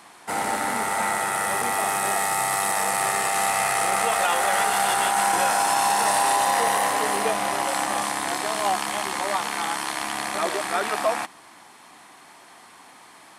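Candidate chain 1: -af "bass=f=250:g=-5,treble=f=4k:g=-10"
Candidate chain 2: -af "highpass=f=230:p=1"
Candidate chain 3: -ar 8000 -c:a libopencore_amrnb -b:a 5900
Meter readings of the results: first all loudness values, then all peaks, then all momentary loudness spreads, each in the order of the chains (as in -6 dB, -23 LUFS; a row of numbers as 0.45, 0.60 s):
-24.0, -23.0, -27.0 LUFS; -10.5, -9.0, -12.0 dBFS; 6, 6, 6 LU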